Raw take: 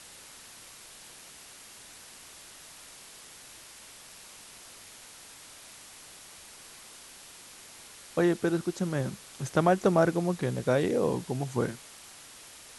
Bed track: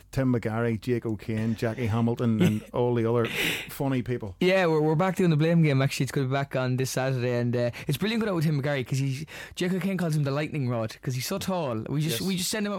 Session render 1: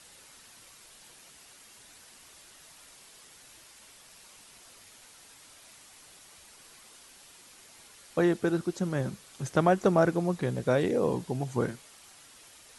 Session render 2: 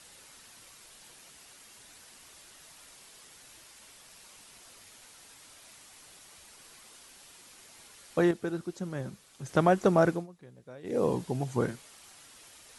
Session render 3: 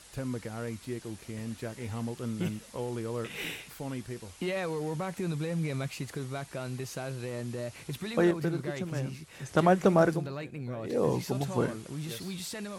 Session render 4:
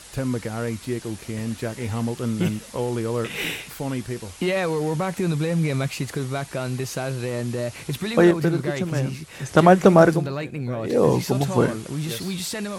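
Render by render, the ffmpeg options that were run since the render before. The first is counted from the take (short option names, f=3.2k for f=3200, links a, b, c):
-af "afftdn=nr=6:nf=-50"
-filter_complex "[0:a]asplit=5[a][b][c][d][e];[a]atrim=end=8.312[f];[b]atrim=start=8.308:end=9.492,asetpts=PTS-STARTPTS,volume=-6dB[g];[c]atrim=start=9.488:end=10.27,asetpts=PTS-STARTPTS,afade=t=out:st=0.612:d=0.17:silence=0.0794328[h];[d]atrim=start=10.27:end=10.83,asetpts=PTS-STARTPTS,volume=-22dB[i];[e]atrim=start=10.83,asetpts=PTS-STARTPTS,afade=t=in:d=0.17:silence=0.0794328[j];[f][g]acrossfade=d=0.004:c1=hsin:c2=hsin[k];[h][i][j]concat=n=3:v=0:a=1[l];[k][l]acrossfade=d=0.004:c1=hsin:c2=hsin"
-filter_complex "[1:a]volume=-10.5dB[a];[0:a][a]amix=inputs=2:normalize=0"
-af "volume=9.5dB"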